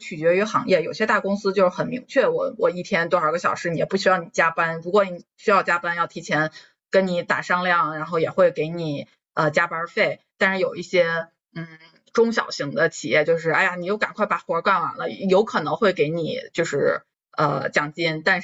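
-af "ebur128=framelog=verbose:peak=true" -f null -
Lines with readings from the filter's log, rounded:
Integrated loudness:
  I:         -21.6 LUFS
  Threshold: -31.8 LUFS
Loudness range:
  LRA:         1.6 LU
  Threshold: -41.9 LUFS
  LRA low:   -22.7 LUFS
  LRA high:  -21.1 LUFS
True peak:
  Peak:       -2.9 dBFS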